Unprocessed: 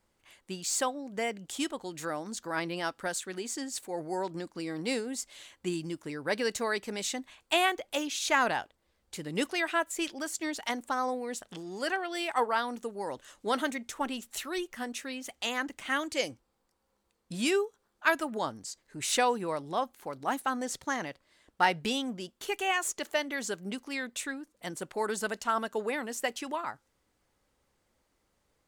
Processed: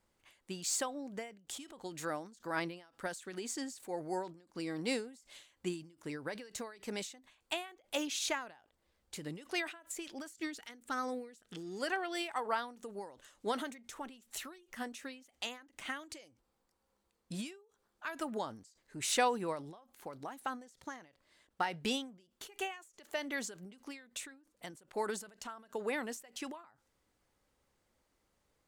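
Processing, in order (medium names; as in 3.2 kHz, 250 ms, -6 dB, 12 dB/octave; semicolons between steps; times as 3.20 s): time-frequency box 10.29–11.80 s, 500–1200 Hz -8 dB; endings held to a fixed fall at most 120 dB/s; trim -3 dB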